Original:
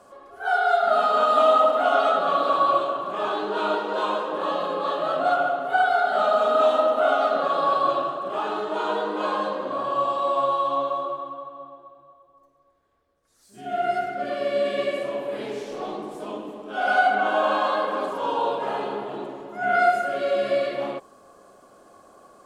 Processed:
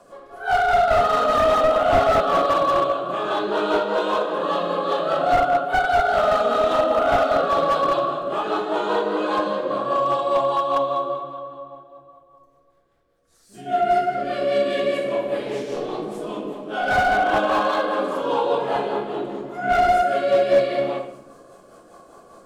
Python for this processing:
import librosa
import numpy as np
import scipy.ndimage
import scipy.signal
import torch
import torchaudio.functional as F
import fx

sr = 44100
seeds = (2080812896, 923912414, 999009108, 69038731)

y = fx.rotary(x, sr, hz=5.0)
y = fx.room_shoebox(y, sr, seeds[0], volume_m3=190.0, walls='mixed', distance_m=0.76)
y = fx.slew_limit(y, sr, full_power_hz=99.0)
y = y * 10.0 ** (4.5 / 20.0)